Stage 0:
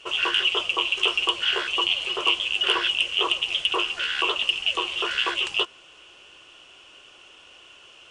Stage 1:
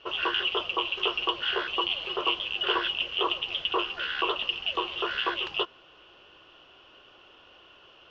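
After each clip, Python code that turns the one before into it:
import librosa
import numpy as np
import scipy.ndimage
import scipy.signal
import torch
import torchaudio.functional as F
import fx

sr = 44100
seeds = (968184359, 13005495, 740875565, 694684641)

y = scipy.signal.sosfilt(scipy.signal.bessel(8, 2900.0, 'lowpass', norm='mag', fs=sr, output='sos'), x)
y = fx.peak_eq(y, sr, hz=2300.0, db=-7.0, octaves=0.6)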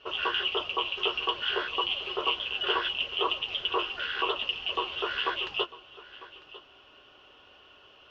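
y = fx.notch_comb(x, sr, f0_hz=170.0)
y = y + 10.0 ** (-18.0 / 20.0) * np.pad(y, (int(949 * sr / 1000.0), 0))[:len(y)]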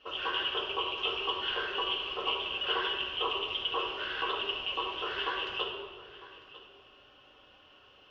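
y = fx.room_shoebox(x, sr, seeds[0], volume_m3=1900.0, walls='mixed', distance_m=2.1)
y = y * librosa.db_to_amplitude(-6.0)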